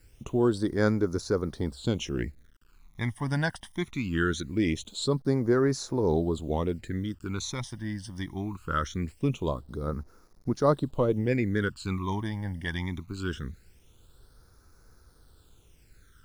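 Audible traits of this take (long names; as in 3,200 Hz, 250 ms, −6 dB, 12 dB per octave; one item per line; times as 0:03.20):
a quantiser's noise floor 10 bits, dither none
phaser sweep stages 12, 0.22 Hz, lowest notch 410–3,000 Hz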